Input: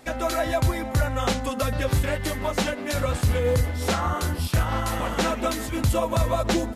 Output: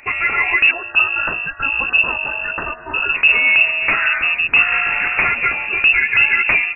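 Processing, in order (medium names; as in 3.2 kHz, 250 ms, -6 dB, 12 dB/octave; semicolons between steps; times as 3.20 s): 0.71–3.15 s: elliptic band-stop 110–1100 Hz, stop band 50 dB; frequency inversion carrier 2.7 kHz; trim +7.5 dB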